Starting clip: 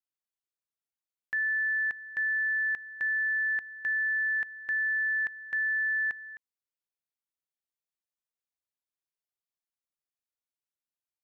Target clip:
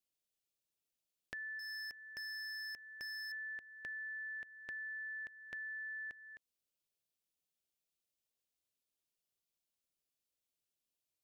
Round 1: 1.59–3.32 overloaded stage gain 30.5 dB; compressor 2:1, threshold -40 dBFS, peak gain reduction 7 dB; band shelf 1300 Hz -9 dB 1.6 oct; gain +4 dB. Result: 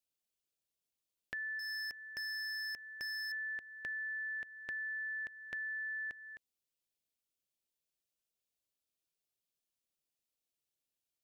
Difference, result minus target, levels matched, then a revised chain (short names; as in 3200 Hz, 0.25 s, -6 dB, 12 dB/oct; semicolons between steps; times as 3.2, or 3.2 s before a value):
compressor: peak gain reduction -4 dB
1.59–3.32 overloaded stage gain 30.5 dB; compressor 2:1, threshold -48.5 dBFS, peak gain reduction 11 dB; band shelf 1300 Hz -9 dB 1.6 oct; gain +4 dB